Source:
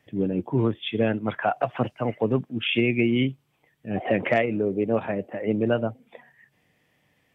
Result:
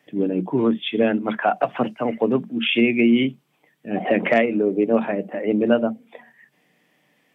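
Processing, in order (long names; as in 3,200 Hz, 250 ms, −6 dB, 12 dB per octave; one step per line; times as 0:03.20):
high-pass filter 170 Hz 24 dB per octave
on a send: convolution reverb, pre-delay 3 ms, DRR 18 dB
on the sum: level +4 dB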